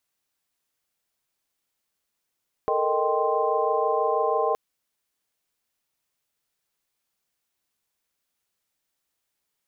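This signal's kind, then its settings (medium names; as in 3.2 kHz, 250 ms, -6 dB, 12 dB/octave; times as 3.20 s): chord A4/A#4/D#5/G5/C6 sine, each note -27 dBFS 1.87 s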